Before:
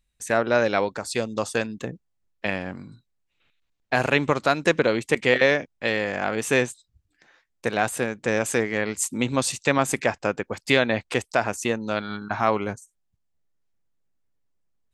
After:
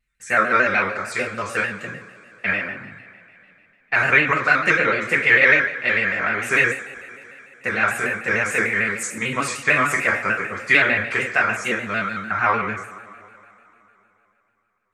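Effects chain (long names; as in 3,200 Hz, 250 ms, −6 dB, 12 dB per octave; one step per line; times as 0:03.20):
flat-topped bell 1,700 Hz +13.5 dB 1.3 octaves
coupled-rooms reverb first 0.5 s, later 3.3 s, from −21 dB, DRR −5 dB
pitch modulation by a square or saw wave square 6.7 Hz, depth 100 cents
level −9.5 dB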